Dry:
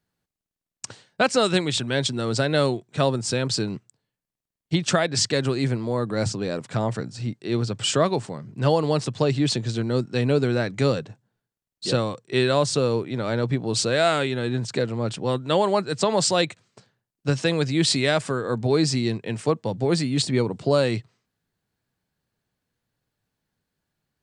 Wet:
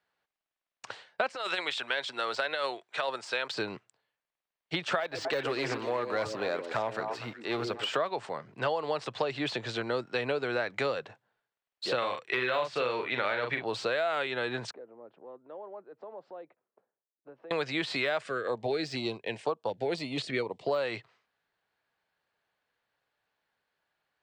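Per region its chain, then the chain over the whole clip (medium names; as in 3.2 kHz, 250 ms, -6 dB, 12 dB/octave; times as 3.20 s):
1.35–3.54 s: high-pass 1 kHz 6 dB/octave + compressor with a negative ratio -27 dBFS, ratio -0.5
5.00–7.96 s: companding laws mixed up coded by A + overload inside the chain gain 17.5 dB + repeats whose band climbs or falls 123 ms, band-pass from 340 Hz, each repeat 1.4 oct, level -4 dB
11.98–13.64 s: peaking EQ 2.3 kHz +9.5 dB 1.5 oct + doubling 40 ms -6 dB
14.71–17.51 s: ladder band-pass 360 Hz, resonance 20% + compression 2:1, threshold -47 dBFS
18.23–20.69 s: transient shaper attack -1 dB, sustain -6 dB + step-sequenced notch 4.1 Hz 910–2000 Hz
whole clip: de-esser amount 70%; three-band isolator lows -21 dB, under 490 Hz, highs -17 dB, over 3.8 kHz; compression 6:1, threshold -32 dBFS; trim +5 dB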